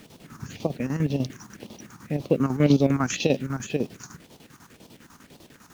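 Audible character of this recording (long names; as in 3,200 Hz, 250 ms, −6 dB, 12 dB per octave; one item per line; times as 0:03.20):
phaser sweep stages 4, 1.9 Hz, lowest notch 530–1,600 Hz
a quantiser's noise floor 10 bits, dither none
chopped level 10 Hz, depth 65%, duty 65%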